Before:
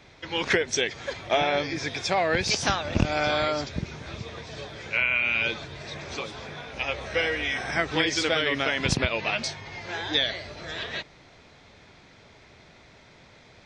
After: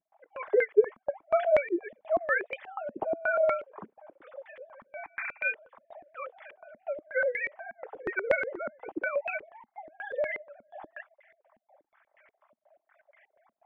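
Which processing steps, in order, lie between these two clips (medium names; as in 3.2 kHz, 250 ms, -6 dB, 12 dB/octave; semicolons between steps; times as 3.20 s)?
formants replaced by sine waves; comb of notches 240 Hz; step-sequenced low-pass 8.3 Hz 230–2000 Hz; trim -6.5 dB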